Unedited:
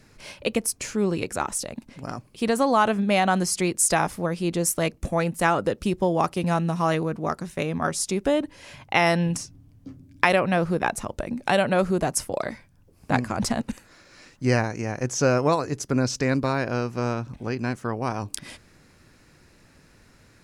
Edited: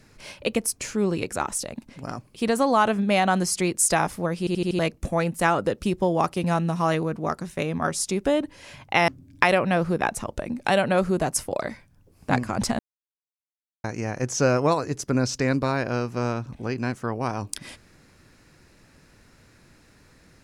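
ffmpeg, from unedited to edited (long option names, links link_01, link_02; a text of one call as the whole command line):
ffmpeg -i in.wav -filter_complex "[0:a]asplit=9[link_01][link_02][link_03][link_04][link_05][link_06][link_07][link_08][link_09];[link_01]atrim=end=4.472[link_10];[link_02]atrim=start=4.388:end=4.472[link_11];[link_03]atrim=start=4.388:end=4.472[link_12];[link_04]atrim=start=4.388:end=4.472[link_13];[link_05]atrim=start=4.388:end=4.472[link_14];[link_06]atrim=start=4.788:end=9.082[link_15];[link_07]atrim=start=9.888:end=13.6,asetpts=PTS-STARTPTS,afade=type=out:start_time=3.708:duration=0.004:curve=hsin[link_16];[link_08]atrim=start=13.6:end=14.65,asetpts=PTS-STARTPTS,volume=0[link_17];[link_09]atrim=start=14.65,asetpts=PTS-STARTPTS,afade=type=in:duration=0.004:curve=hsin[link_18];[link_10][link_11]acrossfade=duration=0.004:curve1=hsin:curve2=hsin[link_19];[link_19][link_12]acrossfade=duration=0.004:curve1=hsin:curve2=hsin[link_20];[link_20][link_13]acrossfade=duration=0.004:curve1=hsin:curve2=hsin[link_21];[link_21][link_14]acrossfade=duration=0.004:curve1=hsin:curve2=hsin[link_22];[link_22][link_15]acrossfade=duration=0.004:curve1=hsin:curve2=hsin[link_23];[link_16][link_17][link_18]concat=n=3:v=0:a=1[link_24];[link_23][link_24]acrossfade=duration=0.004:curve1=hsin:curve2=hsin" out.wav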